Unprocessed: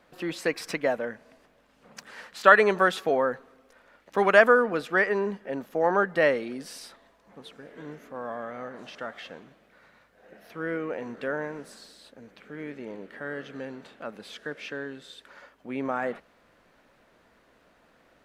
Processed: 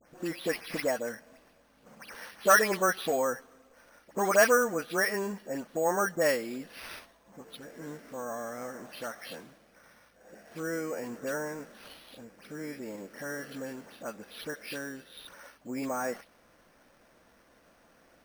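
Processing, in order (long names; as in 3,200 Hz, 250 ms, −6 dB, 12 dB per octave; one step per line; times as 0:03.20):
every frequency bin delayed by itself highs late, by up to 165 ms
in parallel at −2.5 dB: downward compressor, threshold −36 dBFS, peak gain reduction 22.5 dB
on the sum: decimation without filtering 6×
level −5 dB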